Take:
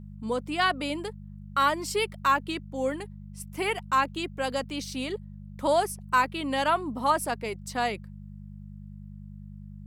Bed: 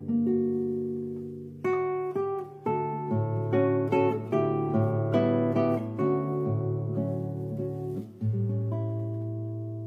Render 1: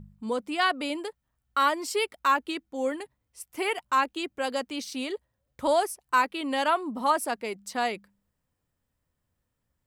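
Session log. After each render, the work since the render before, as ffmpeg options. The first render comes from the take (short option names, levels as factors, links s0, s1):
-af "bandreject=f=50:t=h:w=4,bandreject=f=100:t=h:w=4,bandreject=f=150:t=h:w=4,bandreject=f=200:t=h:w=4"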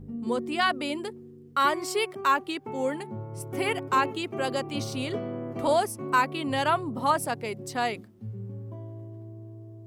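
-filter_complex "[1:a]volume=0.335[s0];[0:a][s0]amix=inputs=2:normalize=0"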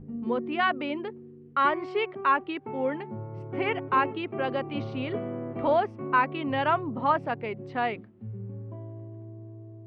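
-af "lowpass=f=2800:w=0.5412,lowpass=f=2800:w=1.3066,bandreject=f=50:t=h:w=6,bandreject=f=100:t=h:w=6"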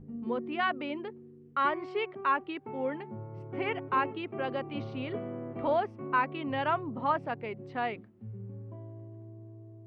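-af "volume=0.596"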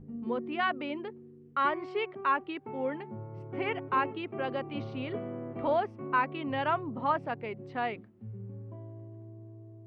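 -af anull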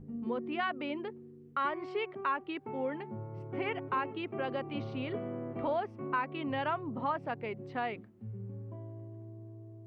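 -af "acompressor=threshold=0.0251:ratio=2"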